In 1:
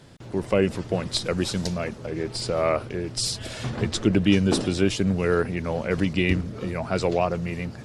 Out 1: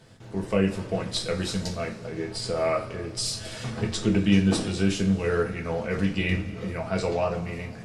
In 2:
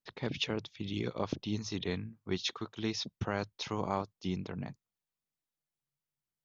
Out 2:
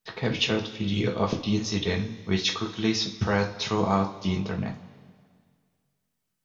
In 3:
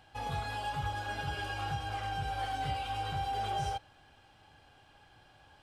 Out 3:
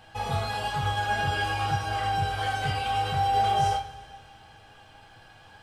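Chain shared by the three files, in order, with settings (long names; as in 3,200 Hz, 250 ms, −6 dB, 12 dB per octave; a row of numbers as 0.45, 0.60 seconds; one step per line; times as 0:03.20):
notch filter 360 Hz, Q 12
coupled-rooms reverb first 0.29 s, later 2 s, from −18 dB, DRR 0 dB
loudness normalisation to −27 LKFS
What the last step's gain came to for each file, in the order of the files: −5.0, +7.5, +6.0 decibels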